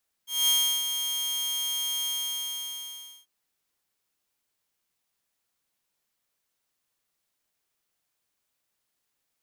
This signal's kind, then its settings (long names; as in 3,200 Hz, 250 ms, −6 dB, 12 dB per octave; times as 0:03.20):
note with an ADSR envelope saw 3,220 Hz, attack 210 ms, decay 343 ms, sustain −8 dB, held 1.79 s, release 1,200 ms −17 dBFS